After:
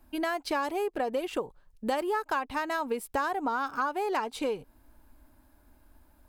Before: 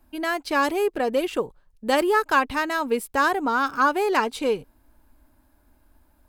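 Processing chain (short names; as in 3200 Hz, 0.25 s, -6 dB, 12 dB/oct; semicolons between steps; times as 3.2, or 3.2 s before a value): dynamic EQ 800 Hz, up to +6 dB, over -35 dBFS, Q 1.5; compressor 5:1, threshold -28 dBFS, peak gain reduction 15 dB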